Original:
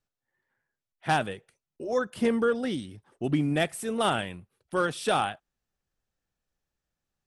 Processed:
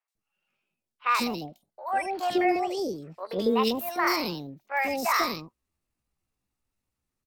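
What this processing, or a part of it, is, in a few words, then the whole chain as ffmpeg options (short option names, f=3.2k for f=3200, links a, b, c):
chipmunk voice: -filter_complex "[0:a]asettb=1/sr,asplit=3[a][b][c];[a]atrim=end=1.854[d];[b]atrim=start=1.85:end=3.27,asetpts=PTS-STARTPTS,afade=t=in:d=0.004:c=qsin,afade=t=out:st=1.416:d=0.004:c=qsin,lowpass=6.9k[e];[c]atrim=start=3.266[f];[d][e]acrossfade=d=0.004:c1=hsin:c2=qsin[g];[g][f]acrossfade=d=0.004:c1=qsin:c2=hsin,asetrate=68011,aresample=44100,atempo=0.64842,acrossover=split=650|2700[h][i][j];[j]adelay=80[k];[h]adelay=150[l];[l][i][k]amix=inputs=3:normalize=0,volume=2.5dB"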